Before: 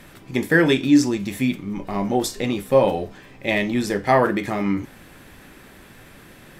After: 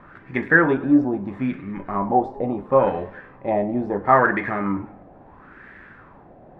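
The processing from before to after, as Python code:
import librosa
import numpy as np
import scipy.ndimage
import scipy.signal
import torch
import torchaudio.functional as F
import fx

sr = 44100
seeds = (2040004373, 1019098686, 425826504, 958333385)

y = fx.cheby_harmonics(x, sr, harmonics=(8,), levels_db=(-34,), full_scale_db=-3.5)
y = fx.filter_lfo_lowpass(y, sr, shape='sine', hz=0.74, low_hz=690.0, high_hz=1800.0, q=4.1)
y = fx.echo_warbled(y, sr, ms=102, feedback_pct=47, rate_hz=2.8, cents=130, wet_db=-19)
y = y * librosa.db_to_amplitude(-3.0)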